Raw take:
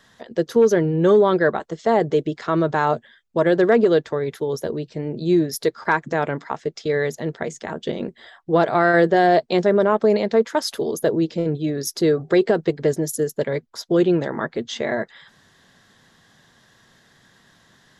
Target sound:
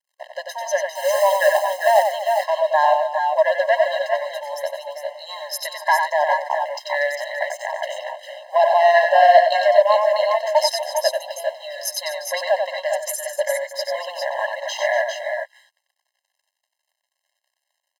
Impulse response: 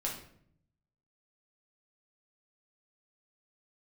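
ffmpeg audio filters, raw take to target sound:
-filter_complex "[0:a]acontrast=88,asettb=1/sr,asplit=3[a][b][c];[a]atrim=end=0.954[d];[b]atrim=start=0.95:end=2.04,asetpts=PTS-STARTPTS,afade=t=in:d=0.004:c=qsin,afade=t=out:st=1.086:d=0.004:c=qsin,acrusher=bits=4:mode=log:mix=0:aa=0.000001[e];[c]atrim=start=2.036[f];[d][e]acrossfade=d=0.004:c1=hsin:c2=qsin[g];[g][f]acrossfade=d=0.004:c1=qsin:c2=hsin,aeval=exprs='sgn(val(0))*max(abs(val(0))-0.00944,0)':c=same,asplit=2[h][i];[i]aecho=0:1:92|239|399|415:0.562|0.211|0.422|0.398[j];[h][j]amix=inputs=2:normalize=0,afftfilt=real='re*eq(mod(floor(b*sr/1024/540),2),1)':imag='im*eq(mod(floor(b*sr/1024/540),2),1)':win_size=1024:overlap=0.75,volume=-1dB"

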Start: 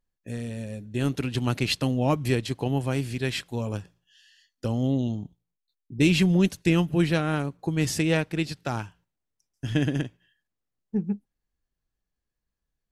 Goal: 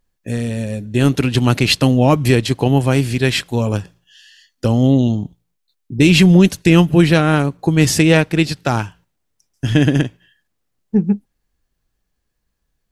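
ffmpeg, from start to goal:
-af "alimiter=level_in=13dB:limit=-1dB:release=50:level=0:latency=1,volume=-1dB"

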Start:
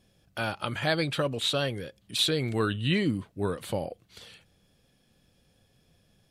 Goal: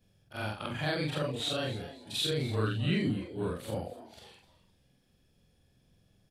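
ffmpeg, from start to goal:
-filter_complex "[0:a]afftfilt=real='re':imag='-im':win_size=4096:overlap=0.75,lowshelf=f=210:g=6,asplit=4[a][b][c][d];[b]adelay=256,afreqshift=140,volume=-16dB[e];[c]adelay=512,afreqshift=280,volume=-26.5dB[f];[d]adelay=768,afreqshift=420,volume=-36.9dB[g];[a][e][f][g]amix=inputs=4:normalize=0,volume=-1.5dB"

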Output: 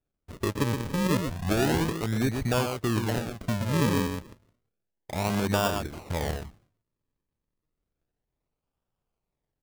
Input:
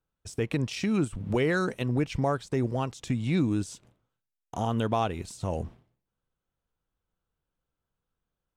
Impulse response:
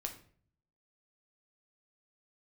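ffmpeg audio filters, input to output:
-af "asetrate=39249,aresample=44100,aecho=1:1:123:0.501,acrusher=samples=42:mix=1:aa=0.000001:lfo=1:lforange=42:lforate=0.31"

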